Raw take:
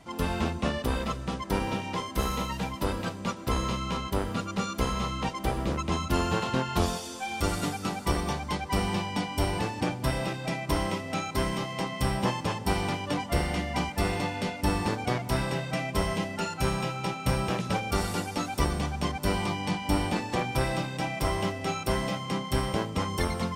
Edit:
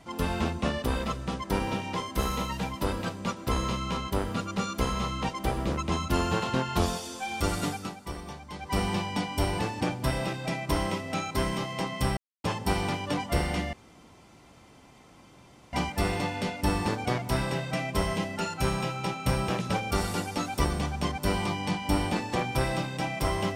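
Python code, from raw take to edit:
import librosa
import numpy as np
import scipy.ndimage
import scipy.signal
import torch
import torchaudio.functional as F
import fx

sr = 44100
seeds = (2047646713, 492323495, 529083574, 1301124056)

y = fx.edit(x, sr, fx.fade_down_up(start_s=7.71, length_s=1.07, db=-10.5, fade_s=0.25),
    fx.silence(start_s=12.17, length_s=0.27),
    fx.insert_room_tone(at_s=13.73, length_s=2.0), tone=tone)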